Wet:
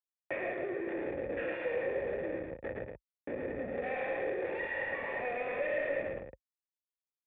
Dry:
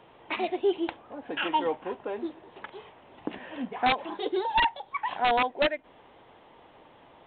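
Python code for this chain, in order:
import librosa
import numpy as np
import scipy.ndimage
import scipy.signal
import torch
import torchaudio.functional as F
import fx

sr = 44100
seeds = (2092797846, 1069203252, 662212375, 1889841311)

p1 = fx.spec_trails(x, sr, decay_s=1.48)
p2 = fx.dynamic_eq(p1, sr, hz=530.0, q=1.7, threshold_db=-36.0, ratio=4.0, max_db=-4)
p3 = fx.schmitt(p2, sr, flips_db=-31.5)
p4 = scipy.signal.sosfilt(scipy.signal.butter(4, 49.0, 'highpass', fs=sr, output='sos'), p3)
p5 = fx.low_shelf(p4, sr, hz=360.0, db=-7.0)
p6 = fx.notch(p5, sr, hz=920.0, q=11.0)
p7 = fx.fold_sine(p6, sr, drive_db=11, ceiling_db=-18.5)
p8 = p6 + (p7 * librosa.db_to_amplitude(-8.5))
p9 = fx.formant_cascade(p8, sr, vowel='e')
p10 = p9 + 10.0 ** (-4.0 / 20.0) * np.pad(p9, (int(112 * sr / 1000.0), 0))[:len(p9)]
y = fx.band_squash(p10, sr, depth_pct=40)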